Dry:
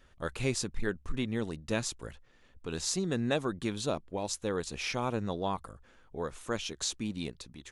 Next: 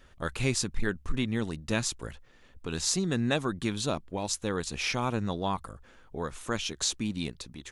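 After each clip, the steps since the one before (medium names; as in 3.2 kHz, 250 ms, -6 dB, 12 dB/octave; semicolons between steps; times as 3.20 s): dynamic bell 500 Hz, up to -5 dB, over -44 dBFS, Q 1.1; trim +4.5 dB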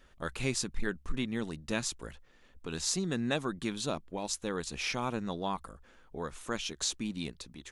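peaking EQ 100 Hz -11.5 dB 0.39 oct; trim -3.5 dB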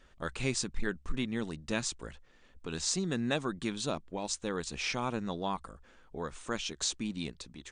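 brick-wall FIR low-pass 9.4 kHz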